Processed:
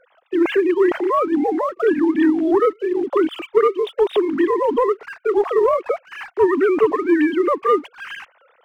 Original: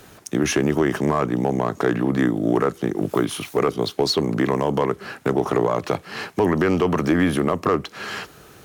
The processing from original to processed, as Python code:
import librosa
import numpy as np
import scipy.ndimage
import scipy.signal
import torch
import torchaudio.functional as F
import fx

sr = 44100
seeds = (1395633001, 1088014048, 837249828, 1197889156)

y = fx.sine_speech(x, sr)
y = fx.leveller(y, sr, passes=1)